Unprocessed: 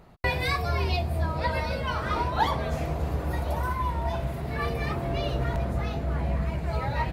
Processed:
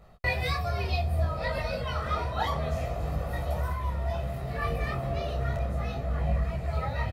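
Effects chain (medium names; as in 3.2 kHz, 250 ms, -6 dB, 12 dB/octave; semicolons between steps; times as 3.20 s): comb 1.6 ms, depth 50%; detune thickener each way 22 cents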